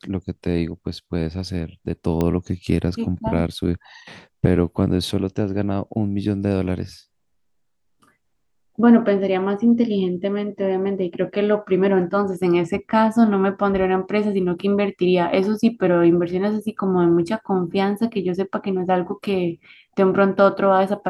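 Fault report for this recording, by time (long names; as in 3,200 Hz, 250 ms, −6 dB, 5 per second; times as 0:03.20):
0:02.21: click −10 dBFS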